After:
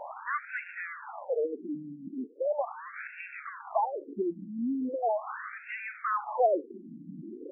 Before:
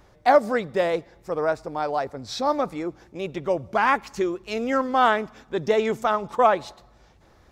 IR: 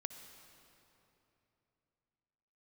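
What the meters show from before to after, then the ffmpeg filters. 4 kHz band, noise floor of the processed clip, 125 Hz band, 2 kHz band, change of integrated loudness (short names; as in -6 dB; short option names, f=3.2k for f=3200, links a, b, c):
under -25 dB, -49 dBFS, -13.5 dB, -9.0 dB, -9.5 dB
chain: -af "aeval=exprs='val(0)+0.5*0.0944*sgn(val(0))':c=same,afftfilt=real='re*between(b*sr/1024,220*pow(2000/220,0.5+0.5*sin(2*PI*0.39*pts/sr))/1.41,220*pow(2000/220,0.5+0.5*sin(2*PI*0.39*pts/sr))*1.41)':imag='im*between(b*sr/1024,220*pow(2000/220,0.5+0.5*sin(2*PI*0.39*pts/sr))/1.41,220*pow(2000/220,0.5+0.5*sin(2*PI*0.39*pts/sr))*1.41)':win_size=1024:overlap=0.75,volume=-6.5dB"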